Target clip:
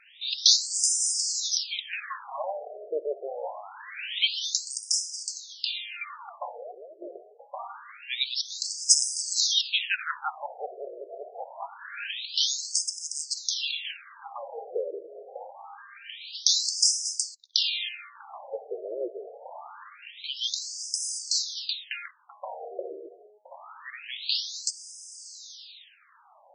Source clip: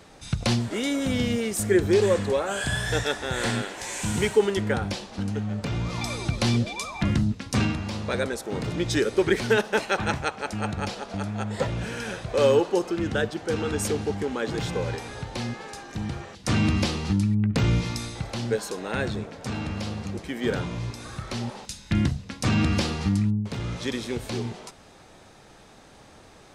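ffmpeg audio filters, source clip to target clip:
-af "aexciter=amount=3.5:drive=9.2:freq=2900,afftfilt=real='re*between(b*sr/1024,480*pow(7000/480,0.5+0.5*sin(2*PI*0.25*pts/sr))/1.41,480*pow(7000/480,0.5+0.5*sin(2*PI*0.25*pts/sr))*1.41)':imag='im*between(b*sr/1024,480*pow(7000/480,0.5+0.5*sin(2*PI*0.25*pts/sr))/1.41,480*pow(7000/480,0.5+0.5*sin(2*PI*0.25*pts/sr))*1.41)':win_size=1024:overlap=0.75"

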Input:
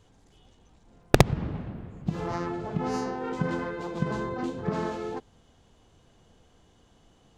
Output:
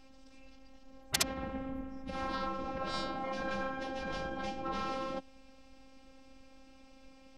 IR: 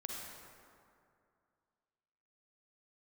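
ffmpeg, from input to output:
-af "afftfilt=real='hypot(re,im)*cos(PI*b)':imag='0':win_size=512:overlap=0.75,afftfilt=real='re*lt(hypot(re,im),0.0708)':imag='im*lt(hypot(re,im),0.0708)':win_size=1024:overlap=0.75,asetrate=34006,aresample=44100,atempo=1.29684,volume=2.24"

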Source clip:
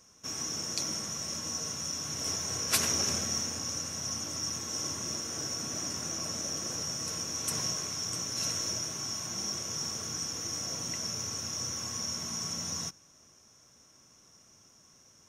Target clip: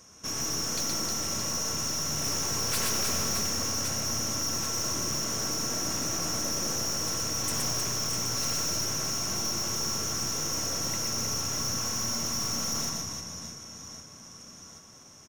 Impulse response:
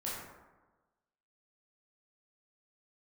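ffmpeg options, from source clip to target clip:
-filter_complex "[0:a]aecho=1:1:120|312|619.2|1111|1897:0.631|0.398|0.251|0.158|0.1,aeval=exprs='(tanh(50.1*val(0)+0.4)-tanh(0.4))/50.1':c=same,asplit=2[s0][s1];[1:a]atrim=start_sample=2205,lowpass=2600[s2];[s1][s2]afir=irnorm=-1:irlink=0,volume=0.282[s3];[s0][s3]amix=inputs=2:normalize=0,volume=2.24"

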